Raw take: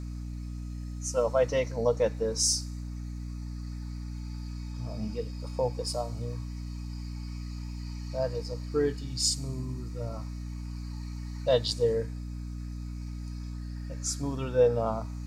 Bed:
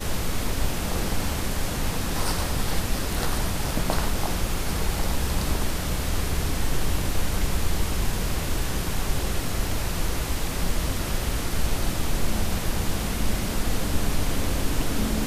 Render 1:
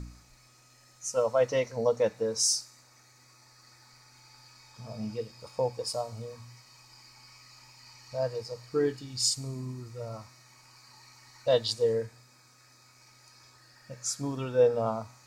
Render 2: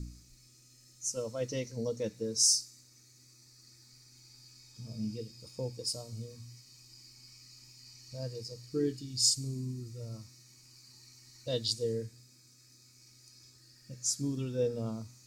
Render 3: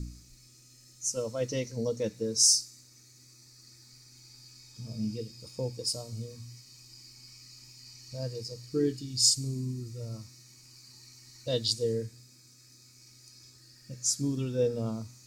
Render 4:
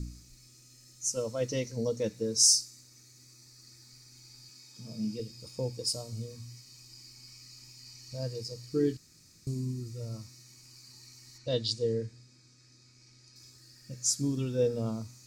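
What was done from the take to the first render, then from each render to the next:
de-hum 60 Hz, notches 5
EQ curve 340 Hz 0 dB, 750 Hz -20 dB, 1200 Hz -17 dB, 5200 Hz +1 dB
gain +3.5 dB
4.49–5.2 HPF 140 Hz 24 dB/oct; 8.97–9.47 room tone; 11.38–13.36 air absorption 84 m

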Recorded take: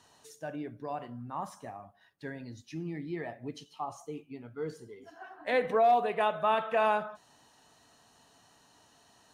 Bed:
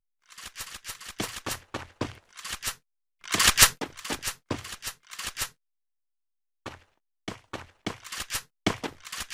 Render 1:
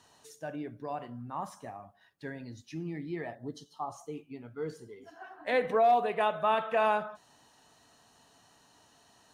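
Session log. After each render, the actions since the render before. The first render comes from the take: 3.35–3.94 Butterworth band-stop 2400 Hz, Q 1.5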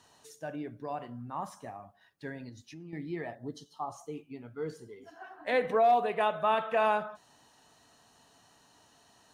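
2.49–2.93 compressor 3:1, threshold -46 dBFS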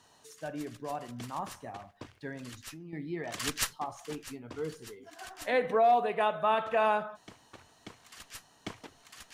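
add bed -15 dB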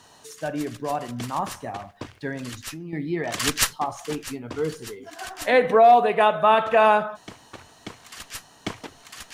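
gain +10 dB

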